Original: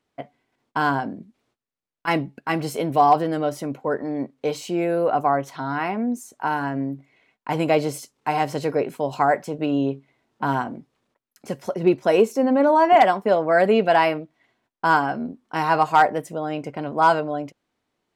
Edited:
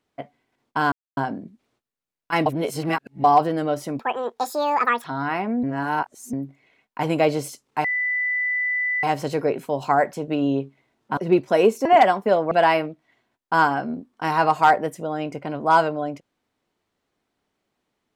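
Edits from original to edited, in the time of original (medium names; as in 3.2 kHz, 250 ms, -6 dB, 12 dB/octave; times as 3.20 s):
0.92 s: insert silence 0.25 s
2.21–2.99 s: reverse
3.74–5.54 s: speed 171%
6.13–6.83 s: reverse
8.34 s: add tone 1.99 kHz -20.5 dBFS 1.19 s
10.48–11.72 s: delete
12.40–12.85 s: delete
13.51–13.83 s: delete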